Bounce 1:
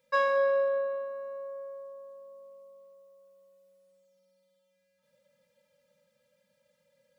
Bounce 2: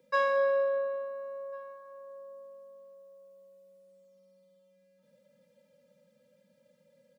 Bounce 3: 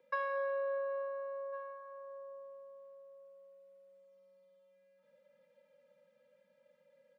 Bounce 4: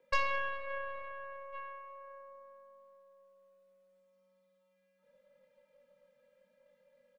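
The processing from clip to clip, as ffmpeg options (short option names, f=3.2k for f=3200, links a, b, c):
-filter_complex "[0:a]acrossover=split=210|360|1600[a][b][c][d];[b]acompressor=mode=upward:threshold=-53dB:ratio=2.5[e];[a][e][c][d]amix=inputs=4:normalize=0,asplit=2[f][g];[g]adelay=1399,volume=-20dB,highshelf=f=4k:g=-31.5[h];[f][h]amix=inputs=2:normalize=0,volume=-1dB"
-filter_complex "[0:a]acrossover=split=490 2900:gain=0.178 1 0.158[a][b][c];[a][b][c]amix=inputs=3:normalize=0,acompressor=threshold=-35dB:ratio=6,volume=1.5dB"
-filter_complex "[0:a]asplit=2[a][b];[b]adelay=21,volume=-4dB[c];[a][c]amix=inputs=2:normalize=0,aeval=exprs='0.0668*(cos(1*acos(clip(val(0)/0.0668,-1,1)))-cos(1*PI/2))+0.0299*(cos(4*acos(clip(val(0)/0.0668,-1,1)))-cos(4*PI/2))+0.00188*(cos(7*acos(clip(val(0)/0.0668,-1,1)))-cos(7*PI/2))':c=same,volume=1dB"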